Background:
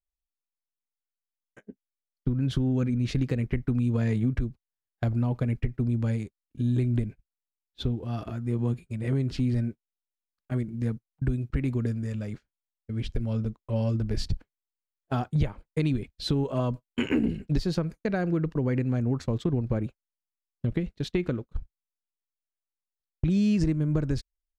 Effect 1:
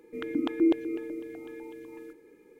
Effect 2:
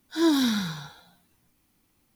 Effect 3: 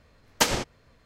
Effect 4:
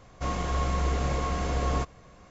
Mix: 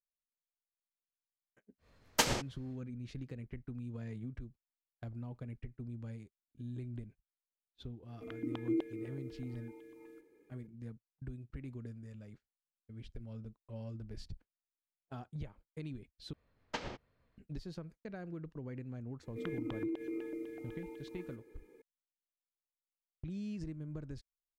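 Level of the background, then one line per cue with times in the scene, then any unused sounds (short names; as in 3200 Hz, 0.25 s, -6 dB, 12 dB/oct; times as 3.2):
background -18 dB
1.78 add 3 -7 dB, fades 0.10 s
8.08 add 1 -10.5 dB
16.33 replace with 3 -15 dB + air absorption 190 m
19.23 add 1 -5 dB + compressor, threshold -30 dBFS
not used: 2, 4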